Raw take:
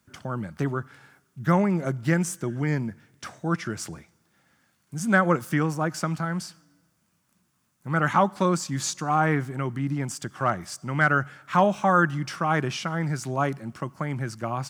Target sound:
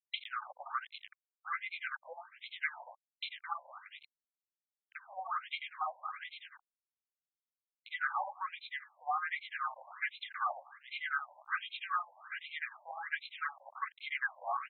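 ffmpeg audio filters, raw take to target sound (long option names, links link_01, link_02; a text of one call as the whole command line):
ffmpeg -i in.wav -filter_complex "[0:a]highpass=frequency=560:poles=1,aecho=1:1:2.5:0.53,asplit=2[link_01][link_02];[link_02]aecho=0:1:36|49:0.335|0.708[link_03];[link_01][link_03]amix=inputs=2:normalize=0,crystalizer=i=6.5:c=0,aresample=16000,acrusher=bits=5:mix=0:aa=0.000001,aresample=44100,acompressor=threshold=-27dB:ratio=16,acrossover=split=1000[link_04][link_05];[link_04]aeval=exprs='val(0)*(1-1/2+1/2*cos(2*PI*10*n/s))':channel_layout=same[link_06];[link_05]aeval=exprs='val(0)*(1-1/2-1/2*cos(2*PI*10*n/s))':channel_layout=same[link_07];[link_06][link_07]amix=inputs=2:normalize=0,asoftclip=type=tanh:threshold=-28.5dB,afftfilt=real='re*between(b*sr/1024,720*pow(3000/720,0.5+0.5*sin(2*PI*1.3*pts/sr))/1.41,720*pow(3000/720,0.5+0.5*sin(2*PI*1.3*pts/sr))*1.41)':imag='im*between(b*sr/1024,720*pow(3000/720,0.5+0.5*sin(2*PI*1.3*pts/sr))/1.41,720*pow(3000/720,0.5+0.5*sin(2*PI*1.3*pts/sr))*1.41)':win_size=1024:overlap=0.75,volume=5dB" out.wav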